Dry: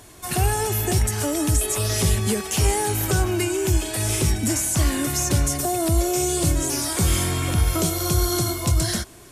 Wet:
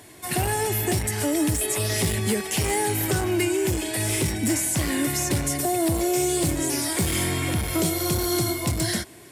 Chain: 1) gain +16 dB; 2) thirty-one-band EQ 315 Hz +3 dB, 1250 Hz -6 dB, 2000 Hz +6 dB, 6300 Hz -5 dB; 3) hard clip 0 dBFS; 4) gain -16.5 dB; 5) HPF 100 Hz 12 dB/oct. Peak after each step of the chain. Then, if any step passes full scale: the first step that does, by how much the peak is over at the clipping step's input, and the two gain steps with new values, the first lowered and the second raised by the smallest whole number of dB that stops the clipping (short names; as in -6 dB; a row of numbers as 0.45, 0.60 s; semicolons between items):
+7.5, +7.5, 0.0, -16.5, -11.5 dBFS; step 1, 7.5 dB; step 1 +8 dB, step 4 -8.5 dB